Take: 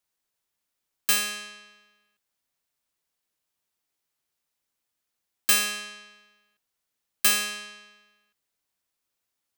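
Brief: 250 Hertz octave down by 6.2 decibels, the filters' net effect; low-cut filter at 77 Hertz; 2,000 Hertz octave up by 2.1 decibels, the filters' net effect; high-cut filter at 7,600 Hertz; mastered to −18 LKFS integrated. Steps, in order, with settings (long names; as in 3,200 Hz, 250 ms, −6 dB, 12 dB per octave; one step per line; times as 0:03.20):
high-pass filter 77 Hz
low-pass filter 7,600 Hz
parametric band 250 Hz −8 dB
parametric band 2,000 Hz +3 dB
level +8.5 dB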